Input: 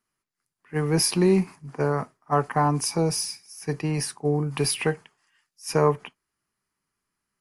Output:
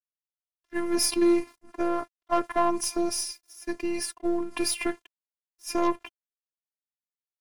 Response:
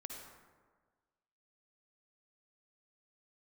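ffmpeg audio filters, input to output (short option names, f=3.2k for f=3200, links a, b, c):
-af "aeval=exprs='sgn(val(0))*max(abs(val(0))-0.00299,0)':c=same,aeval=exprs='0.376*(cos(1*acos(clip(val(0)/0.376,-1,1)))-cos(1*PI/2))+0.0266*(cos(4*acos(clip(val(0)/0.376,-1,1)))-cos(4*PI/2))+0.0422*(cos(5*acos(clip(val(0)/0.376,-1,1)))-cos(5*PI/2))+0.0168*(cos(7*acos(clip(val(0)/0.376,-1,1)))-cos(7*PI/2))+0.00944*(cos(8*acos(clip(val(0)/0.376,-1,1)))-cos(8*PI/2))':c=same,afftfilt=real='hypot(re,im)*cos(PI*b)':imag='0':win_size=512:overlap=0.75"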